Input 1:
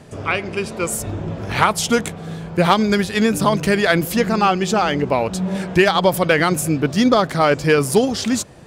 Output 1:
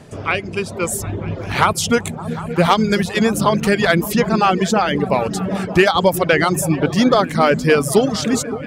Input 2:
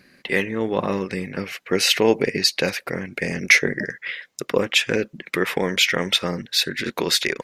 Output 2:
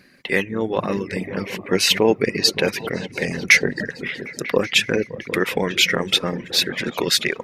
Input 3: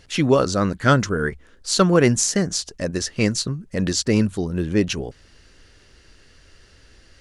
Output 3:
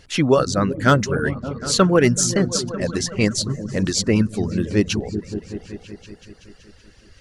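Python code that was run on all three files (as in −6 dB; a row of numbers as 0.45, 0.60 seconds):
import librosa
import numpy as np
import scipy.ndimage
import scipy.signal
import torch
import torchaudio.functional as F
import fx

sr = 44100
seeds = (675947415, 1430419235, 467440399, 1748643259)

y = np.clip(10.0 ** (4.0 / 20.0) * x, -1.0, 1.0) / 10.0 ** (4.0 / 20.0)
y = fx.echo_opening(y, sr, ms=189, hz=200, octaves=1, feedback_pct=70, wet_db=-6)
y = fx.dereverb_blind(y, sr, rt60_s=0.64)
y = y * 10.0 ** (-2 / 20.0) / np.max(np.abs(y))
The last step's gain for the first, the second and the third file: +1.5, +1.5, +1.5 decibels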